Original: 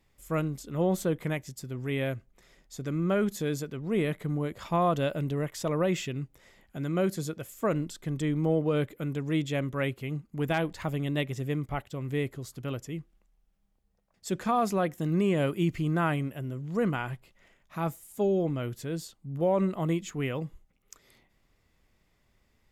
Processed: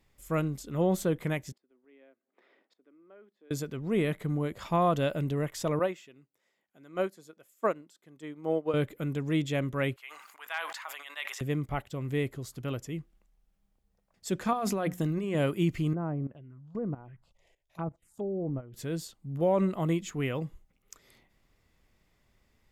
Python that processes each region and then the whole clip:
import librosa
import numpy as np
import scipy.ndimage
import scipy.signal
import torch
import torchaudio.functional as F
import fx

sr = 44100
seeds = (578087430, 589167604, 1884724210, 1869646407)

y = fx.chain(x, sr, fx.steep_highpass(hz=260.0, slope=36),
    fx.gate_flip(shuts_db=-37.0, range_db=-25),
    fx.air_absorb(metres=400.0), at=(1.52, 3.51))
y = fx.chain(y, sr, fx.highpass(hz=260.0, slope=12),
    fx.dynamic_eq(hz=1000.0, q=0.81, threshold_db=-43.0, ratio=4.0, max_db=4),
    fx.upward_expand(threshold_db=-34.0, expansion=2.5), at=(5.79, 8.74))
y = fx.chain(y, sr, fx.highpass(hz=1000.0, slope=24),
    fx.high_shelf(hz=2900.0, db=-7.0),
    fx.sustainer(db_per_s=45.0), at=(9.96, 11.41))
y = fx.chain(y, sr, fx.hum_notches(base_hz=60, count=4),
    fx.over_compress(threshold_db=-30.0, ratio=-1.0), at=(14.53, 15.35))
y = fx.chain(y, sr, fx.env_lowpass_down(base_hz=670.0, full_db=-25.5),
    fx.level_steps(step_db=16),
    fx.env_phaser(low_hz=190.0, high_hz=4800.0, full_db=-31.0), at=(15.93, 18.74))